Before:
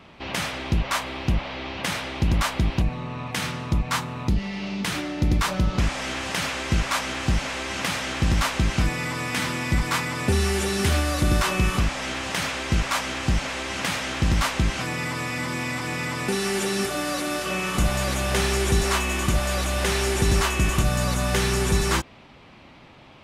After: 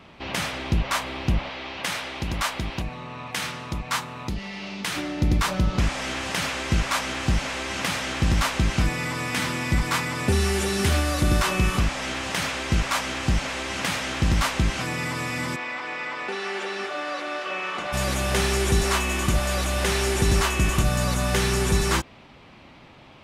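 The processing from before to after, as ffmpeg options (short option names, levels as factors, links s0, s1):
-filter_complex "[0:a]asettb=1/sr,asplit=3[s0][s1][s2];[s0]atrim=end=1.494[s3];[s1]atrim=start=1.49:end=4.97,asetpts=PTS-STARTPTS,afade=t=in:d=0.004:c=qsin,afade=t=out:st=3.476:d=0.004:c=qsin,lowshelf=f=350:g=-9[s4];[s2]atrim=start=4.966[s5];[s3][s4]acrossfade=d=0.004:c1=hsin:c2=qsin[s6];[s6][s5]acrossfade=d=0.004:c1=qsin:c2=hsin,asplit=3[s7][s8][s9];[s7]afade=t=out:st=15.55:d=0.02[s10];[s8]highpass=500,lowpass=3100,afade=t=in:st=15.55:d=0.02,afade=t=out:st=17.92:d=0.02[s11];[s9]afade=t=in:st=17.92:d=0.02[s12];[s10][s11][s12]amix=inputs=3:normalize=0"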